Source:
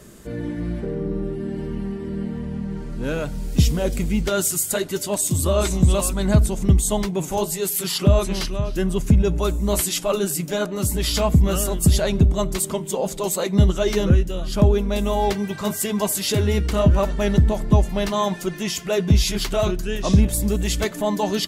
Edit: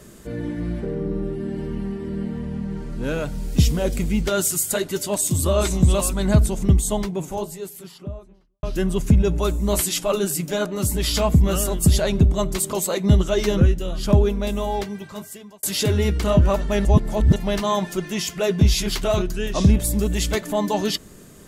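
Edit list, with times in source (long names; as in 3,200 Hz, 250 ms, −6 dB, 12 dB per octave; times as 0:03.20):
0:06.46–0:08.63: fade out and dull
0:12.73–0:13.22: remove
0:14.66–0:16.12: fade out
0:17.34–0:17.85: reverse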